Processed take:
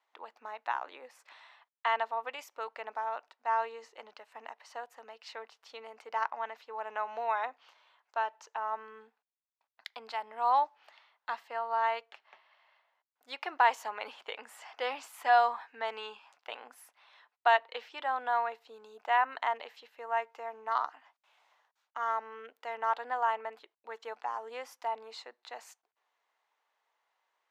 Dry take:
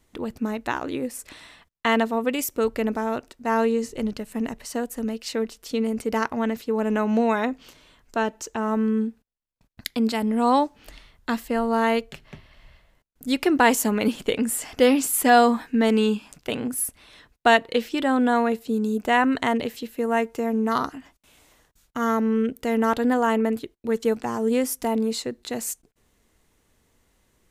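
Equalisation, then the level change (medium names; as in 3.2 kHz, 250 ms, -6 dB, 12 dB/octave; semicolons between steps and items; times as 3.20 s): ladder high-pass 710 Hz, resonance 45%; distance through air 230 m; treble shelf 8 kHz +11.5 dB; 0.0 dB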